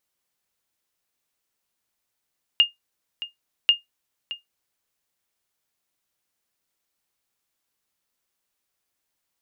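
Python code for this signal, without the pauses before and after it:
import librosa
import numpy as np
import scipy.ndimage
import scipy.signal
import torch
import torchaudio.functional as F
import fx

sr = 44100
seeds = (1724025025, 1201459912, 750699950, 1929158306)

y = fx.sonar_ping(sr, hz=2830.0, decay_s=0.15, every_s=1.09, pings=2, echo_s=0.62, echo_db=-15.5, level_db=-7.5)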